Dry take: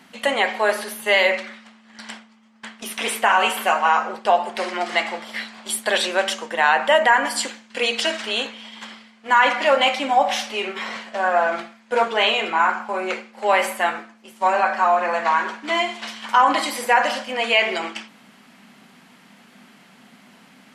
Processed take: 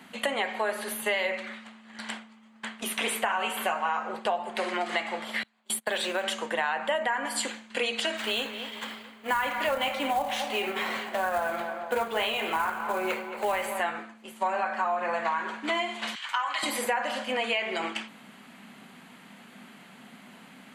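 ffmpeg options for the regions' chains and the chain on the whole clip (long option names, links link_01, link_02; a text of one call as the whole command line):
ffmpeg -i in.wav -filter_complex "[0:a]asettb=1/sr,asplit=3[link_01][link_02][link_03];[link_01]atrim=end=5.434[link_04];[link_02]atrim=start=5.43:end=6.24,asetpts=PTS-STARTPTS,afade=type=in:duration=0.004:curve=qsin,afade=type=out:start_time=0.806:duration=0.004:curve=qsin,agate=range=-29dB:threshold=-29dB:ratio=16:release=100:detection=peak,acompressor=threshold=-26dB:ratio=1.5:attack=3.2:release=140:knee=1:detection=peak,acrusher=bits=7:mode=log:mix=0:aa=0.000001[link_05];[link_03]atrim=start=6.236[link_06];[link_04][link_05]acrossfade=duration=0.004:curve1=hsin:curve2=qsin[link_07];[link_07][link_06]acrossfade=duration=0.004:curve1=qsin:curve2=hsin,asettb=1/sr,asplit=3[link_08][link_09][link_10];[link_08]atrim=end=8.174[link_11];[link_09]atrim=start=8.17:end=13.8,asetpts=PTS-STARTPTS,afade=type=in:duration=0.004:curve=qsin,afade=type=out:start_time=5.626:duration=0.004:curve=qsin,acrusher=bits=4:mode=log:mix=0:aa=0.000001,asplit=2[link_12][link_13];[link_13]adelay=223,lowpass=frequency=2300:poles=1,volume=-13dB,asplit=2[link_14][link_15];[link_15]adelay=223,lowpass=frequency=2300:poles=1,volume=0.51,asplit=2[link_16][link_17];[link_17]adelay=223,lowpass=frequency=2300:poles=1,volume=0.51,asplit=2[link_18][link_19];[link_19]adelay=223,lowpass=frequency=2300:poles=1,volume=0.51,asplit=2[link_20][link_21];[link_21]adelay=223,lowpass=frequency=2300:poles=1,volume=0.51[link_22];[link_12][link_14][link_16][link_18][link_20][link_22]amix=inputs=6:normalize=0,atrim=end_sample=248283[link_23];[link_10]atrim=start=13.796[link_24];[link_11][link_23]acrossfade=duration=0.004:curve1=hsin:curve2=qsin[link_25];[link_25][link_24]acrossfade=duration=0.004:curve1=qsin:curve2=hsin,asettb=1/sr,asplit=3[link_26][link_27][link_28];[link_26]atrim=end=16.154[link_29];[link_27]atrim=start=16.15:end=16.63,asetpts=PTS-STARTPTS,afade=type=in:duration=0.004:curve=qsin,afade=type=out:start_time=0.476:duration=0.004:curve=qsin,highpass=1500,equalizer=frequency=11000:width_type=o:width=0.43:gain=-11[link_30];[link_28]atrim=start=16.626[link_31];[link_29][link_30]acrossfade=duration=0.004:curve1=hsin:curve2=qsin[link_32];[link_32][link_31]acrossfade=duration=0.004:curve1=qsin:curve2=hsin,equalizer=frequency=5400:width_type=o:width=0.35:gain=-10,acrossover=split=150[link_33][link_34];[link_34]acompressor=threshold=-26dB:ratio=5[link_35];[link_33][link_35]amix=inputs=2:normalize=0" out.wav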